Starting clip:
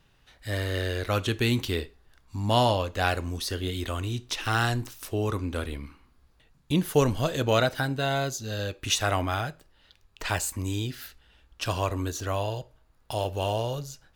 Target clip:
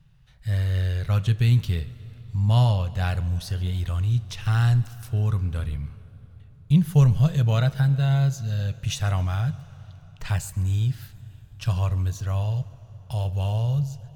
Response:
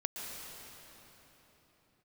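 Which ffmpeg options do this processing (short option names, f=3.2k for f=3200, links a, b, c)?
-filter_complex "[0:a]lowshelf=f=210:t=q:w=3:g=11.5,asplit=2[a][b];[1:a]atrim=start_sample=2205,asetrate=48510,aresample=44100,adelay=138[c];[b][c]afir=irnorm=-1:irlink=0,volume=-19dB[d];[a][d]amix=inputs=2:normalize=0,volume=-6dB"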